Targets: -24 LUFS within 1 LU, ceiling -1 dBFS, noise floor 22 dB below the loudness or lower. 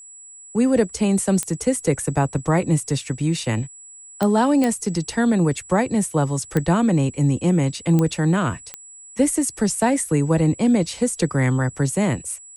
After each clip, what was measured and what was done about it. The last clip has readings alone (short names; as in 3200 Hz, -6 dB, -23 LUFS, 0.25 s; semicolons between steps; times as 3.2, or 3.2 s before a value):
clicks 6; steady tone 7800 Hz; tone level -40 dBFS; loudness -20.5 LUFS; peak -5.5 dBFS; loudness target -24.0 LUFS
-> de-click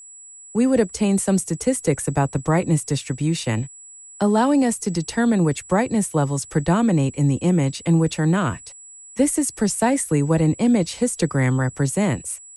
clicks 0; steady tone 7800 Hz; tone level -40 dBFS
-> notch 7800 Hz, Q 30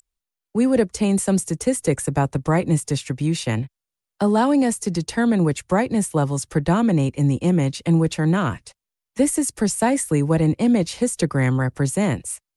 steady tone none; loudness -20.5 LUFS; peak -6.0 dBFS; loudness target -24.0 LUFS
-> gain -3.5 dB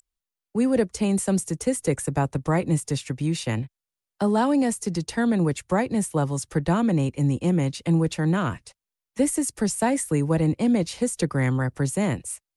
loudness -24.0 LUFS; peak -9.5 dBFS; noise floor -89 dBFS